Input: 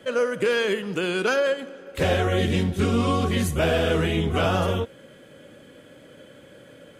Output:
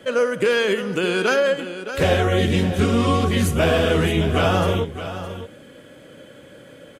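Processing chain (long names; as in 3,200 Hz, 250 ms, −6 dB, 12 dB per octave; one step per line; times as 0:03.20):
single-tap delay 615 ms −11.5 dB
level +3.5 dB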